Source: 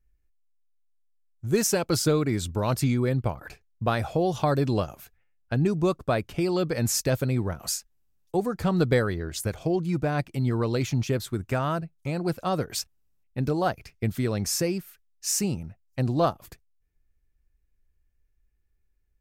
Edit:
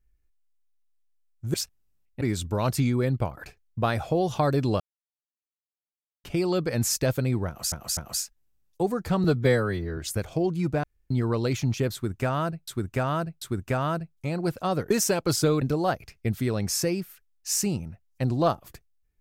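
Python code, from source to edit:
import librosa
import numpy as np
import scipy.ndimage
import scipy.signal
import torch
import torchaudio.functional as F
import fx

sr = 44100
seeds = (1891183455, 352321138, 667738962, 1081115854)

y = fx.edit(x, sr, fx.swap(start_s=1.54, length_s=0.71, other_s=12.72, other_length_s=0.67),
    fx.silence(start_s=4.84, length_s=1.44),
    fx.repeat(start_s=7.51, length_s=0.25, count=3),
    fx.stretch_span(start_s=8.78, length_s=0.49, factor=1.5),
    fx.room_tone_fill(start_s=10.13, length_s=0.27),
    fx.repeat(start_s=11.23, length_s=0.74, count=3), tone=tone)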